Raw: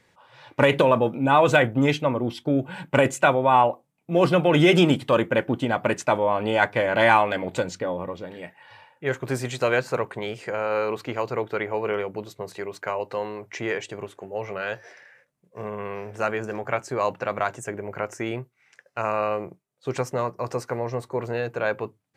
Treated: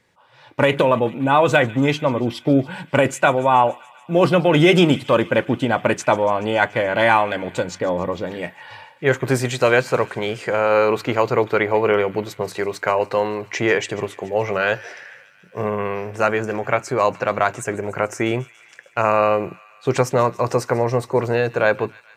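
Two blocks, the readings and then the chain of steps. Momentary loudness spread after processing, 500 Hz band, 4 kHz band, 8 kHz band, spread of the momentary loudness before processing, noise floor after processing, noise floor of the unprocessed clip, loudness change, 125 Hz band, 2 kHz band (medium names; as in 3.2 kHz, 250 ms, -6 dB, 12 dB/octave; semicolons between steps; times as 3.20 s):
11 LU, +5.0 dB, +4.0 dB, +5.5 dB, 16 LU, -50 dBFS, -68 dBFS, +4.5 dB, +4.5 dB, +4.5 dB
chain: level rider; on a send: feedback echo behind a high-pass 143 ms, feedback 73%, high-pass 1.8 kHz, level -18.5 dB; on the sum: trim -1 dB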